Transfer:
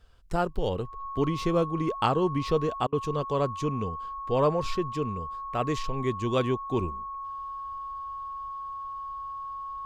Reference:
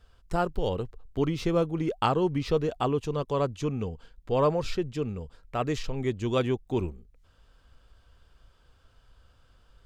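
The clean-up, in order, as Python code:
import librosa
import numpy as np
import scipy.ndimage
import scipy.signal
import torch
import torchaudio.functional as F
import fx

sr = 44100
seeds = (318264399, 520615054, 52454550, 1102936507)

y = fx.notch(x, sr, hz=1100.0, q=30.0)
y = fx.fix_interpolate(y, sr, at_s=(2.87,), length_ms=54.0)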